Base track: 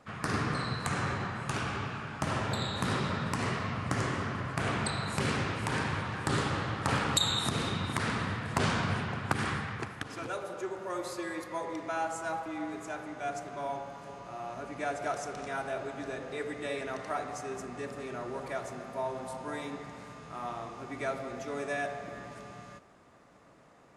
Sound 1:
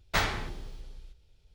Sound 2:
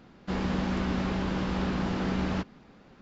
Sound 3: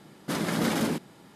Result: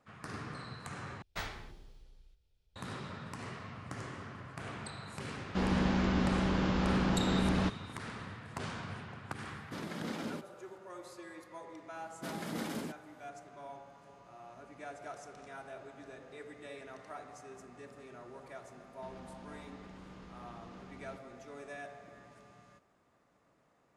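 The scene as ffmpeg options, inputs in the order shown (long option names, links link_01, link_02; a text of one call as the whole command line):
ffmpeg -i bed.wav -i cue0.wav -i cue1.wav -i cue2.wav -filter_complex "[2:a]asplit=2[link_01][link_02];[3:a]asplit=2[link_03][link_04];[0:a]volume=-12dB[link_05];[link_03]acrossover=split=6400[link_06][link_07];[link_07]acompressor=threshold=-50dB:ratio=4:attack=1:release=60[link_08];[link_06][link_08]amix=inputs=2:normalize=0[link_09];[link_02]acompressor=threshold=-37dB:ratio=6:attack=3.2:release=140:knee=1:detection=peak[link_10];[link_05]asplit=2[link_11][link_12];[link_11]atrim=end=1.224[link_13];[1:a]atrim=end=1.54,asetpts=PTS-STARTPTS,volume=-13dB[link_14];[link_12]atrim=start=2.756[link_15];[link_01]atrim=end=3.01,asetpts=PTS-STARTPTS,volume=-1dB,afade=type=in:duration=0.004:curve=hsin,afade=type=out:start_time=3.006:duration=0.004:curve=hsin,adelay=5270[link_16];[link_09]atrim=end=1.35,asetpts=PTS-STARTPTS,volume=-13dB,afade=type=in:duration=0.004:curve=hsin,afade=type=out:start_time=1.346:duration=0.004:curve=hsin,adelay=9430[link_17];[link_04]atrim=end=1.35,asetpts=PTS-STARTPTS,volume=-12.5dB,afade=type=in:duration=0.004:curve=hsin,afade=type=out:start_time=1.346:duration=0.004:curve=hsin,adelay=11940[link_18];[link_10]atrim=end=3.01,asetpts=PTS-STARTPTS,volume=-12dB,afade=type=in:duration=0.004:curve=hsin,afade=type=out:start_time=3.006:duration=0.004:curve=hsin,adelay=18750[link_19];[link_13][link_14]acrossfade=duration=0.004:curve1=hsin:curve2=hsin[link_20];[link_20][link_15]acrossfade=duration=0.004:curve1=hsin:curve2=hsin[link_21];[link_21][link_16][link_17][link_18][link_19]amix=inputs=5:normalize=0" out.wav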